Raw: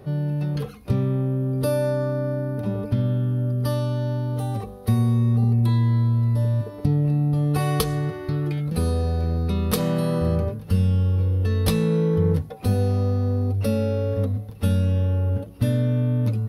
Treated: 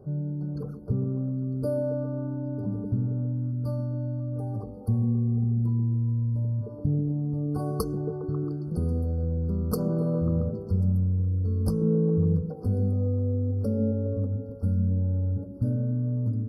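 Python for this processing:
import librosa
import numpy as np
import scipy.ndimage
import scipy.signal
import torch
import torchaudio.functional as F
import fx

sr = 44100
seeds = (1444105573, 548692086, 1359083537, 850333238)

y = fx.envelope_sharpen(x, sr, power=1.5)
y = fx.brickwall_bandstop(y, sr, low_hz=1600.0, high_hz=4300.0)
y = fx.echo_stepped(y, sr, ms=136, hz=240.0, octaves=0.7, feedback_pct=70, wet_db=-2.5)
y = F.gain(torch.from_numpy(y), -5.0).numpy()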